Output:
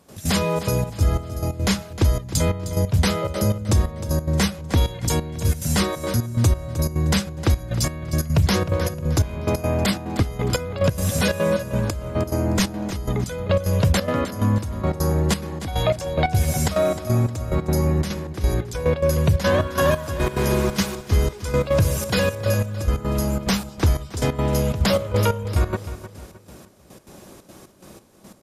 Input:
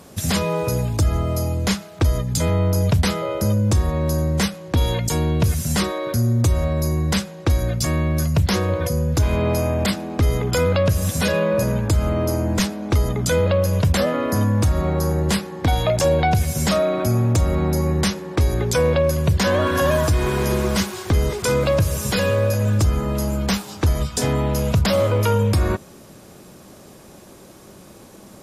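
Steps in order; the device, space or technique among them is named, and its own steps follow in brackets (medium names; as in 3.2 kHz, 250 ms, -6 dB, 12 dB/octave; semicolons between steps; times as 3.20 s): trance gate with a delay (trance gate ".x.xxxx.xx..xx.." 179 bpm -12 dB; feedback delay 309 ms, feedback 36%, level -13 dB)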